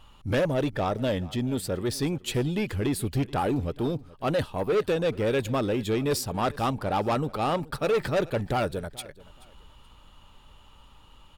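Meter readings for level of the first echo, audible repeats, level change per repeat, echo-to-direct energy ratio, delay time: -20.5 dB, 2, -11.5 dB, -20.0 dB, 0.429 s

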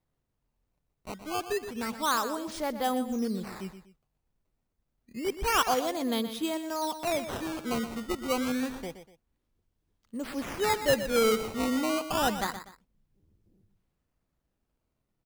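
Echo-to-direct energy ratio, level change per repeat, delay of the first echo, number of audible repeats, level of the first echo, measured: -10.5 dB, -10.0 dB, 0.122 s, 2, -11.0 dB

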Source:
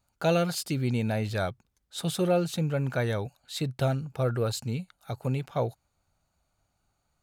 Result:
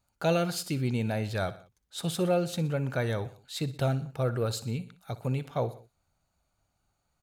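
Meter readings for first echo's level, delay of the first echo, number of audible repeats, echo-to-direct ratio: -16.5 dB, 61 ms, 3, -15.0 dB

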